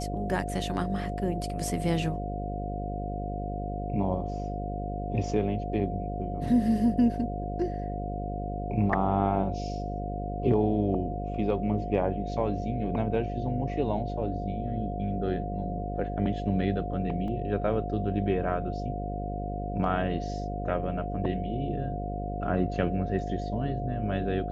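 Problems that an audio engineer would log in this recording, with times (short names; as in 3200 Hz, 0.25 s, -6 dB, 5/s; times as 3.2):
buzz 50 Hz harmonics 12 -34 dBFS
tone 710 Hz -36 dBFS
17.28 gap 2.9 ms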